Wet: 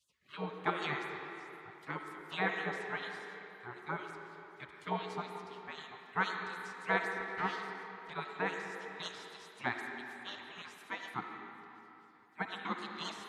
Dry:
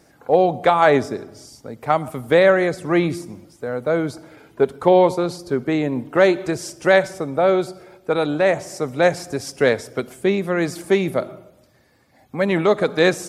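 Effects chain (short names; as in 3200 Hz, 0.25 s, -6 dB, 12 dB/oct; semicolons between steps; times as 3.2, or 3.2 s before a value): 7.03–8.1 minimum comb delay 0.35 ms; wah 4 Hz 520–2500 Hz, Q 7.7; spectral gate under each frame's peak -30 dB weak; on a send: speaker cabinet 230–6700 Hz, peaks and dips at 240 Hz +4 dB, 390 Hz +7 dB, 620 Hz -6 dB, 1900 Hz +4 dB, 3000 Hz -4 dB, 5600 Hz -7 dB + reverb RT60 3.3 s, pre-delay 30 ms, DRR 3 dB; on the sum: gain +15 dB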